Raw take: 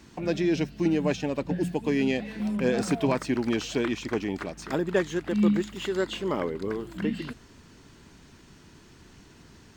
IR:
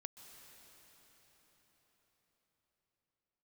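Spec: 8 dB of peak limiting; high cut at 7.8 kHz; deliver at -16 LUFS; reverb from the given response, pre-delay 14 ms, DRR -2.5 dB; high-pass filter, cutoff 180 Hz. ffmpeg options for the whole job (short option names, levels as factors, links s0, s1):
-filter_complex "[0:a]highpass=180,lowpass=7800,alimiter=limit=0.1:level=0:latency=1,asplit=2[s0][s1];[1:a]atrim=start_sample=2205,adelay=14[s2];[s1][s2]afir=irnorm=-1:irlink=0,volume=2.37[s3];[s0][s3]amix=inputs=2:normalize=0,volume=3.16"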